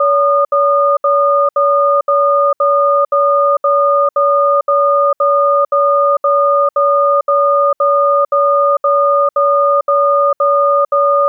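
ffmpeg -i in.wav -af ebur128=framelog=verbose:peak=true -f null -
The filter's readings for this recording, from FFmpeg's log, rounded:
Integrated loudness:
  I:         -11.8 LUFS
  Threshold: -21.8 LUFS
Loudness range:
  LRA:         0.1 LU
  Threshold: -31.8 LUFS
  LRA low:   -11.8 LUFS
  LRA high:  -11.7 LUFS
True peak:
  Peak:       -5.1 dBFS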